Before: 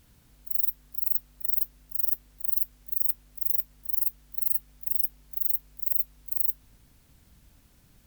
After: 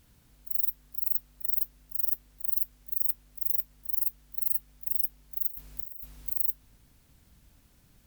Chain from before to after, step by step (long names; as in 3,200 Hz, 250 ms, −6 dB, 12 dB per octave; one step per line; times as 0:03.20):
0:05.48–0:06.32: compressor whose output falls as the input rises −36 dBFS, ratio −1
level −2 dB